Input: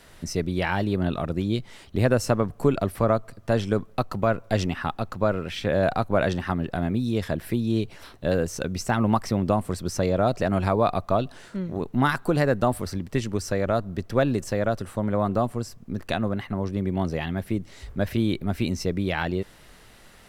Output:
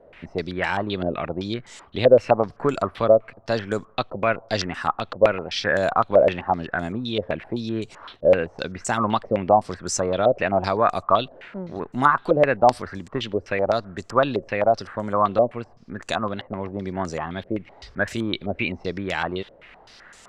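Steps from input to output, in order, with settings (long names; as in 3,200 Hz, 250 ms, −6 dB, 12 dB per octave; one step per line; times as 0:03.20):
low-shelf EQ 270 Hz −10 dB
low-pass on a step sequencer 7.8 Hz 550–7,300 Hz
level +2 dB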